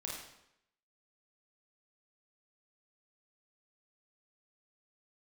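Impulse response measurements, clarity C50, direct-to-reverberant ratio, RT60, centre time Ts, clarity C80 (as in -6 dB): 0.5 dB, -3.5 dB, 0.80 s, 56 ms, 4.5 dB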